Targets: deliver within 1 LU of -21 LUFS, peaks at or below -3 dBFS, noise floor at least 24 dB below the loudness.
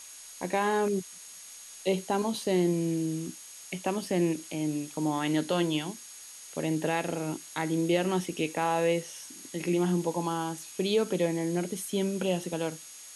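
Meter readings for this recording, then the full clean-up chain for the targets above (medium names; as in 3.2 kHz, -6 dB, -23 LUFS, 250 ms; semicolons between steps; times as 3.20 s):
steady tone 6.6 kHz; tone level -49 dBFS; noise floor -47 dBFS; noise floor target -54 dBFS; loudness -30.0 LUFS; peak level -13.5 dBFS; loudness target -21.0 LUFS
-> band-stop 6.6 kHz, Q 30; noise reduction 7 dB, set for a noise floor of -47 dBFS; trim +9 dB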